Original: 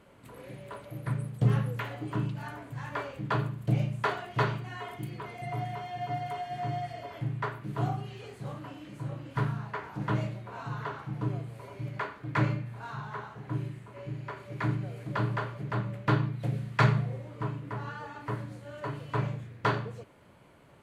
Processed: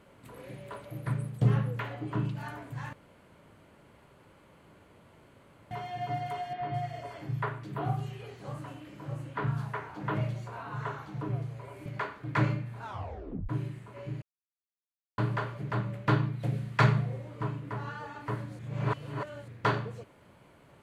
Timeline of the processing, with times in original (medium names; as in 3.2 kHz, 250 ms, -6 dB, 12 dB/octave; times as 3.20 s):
1.49–2.25 s: treble shelf 4.6 kHz -8 dB
2.93–5.71 s: room tone
6.53–11.86 s: three bands offset in time mids, lows, highs 70/210 ms, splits 210/4000 Hz
12.83 s: tape stop 0.66 s
14.22–15.18 s: mute
18.59–19.48 s: reverse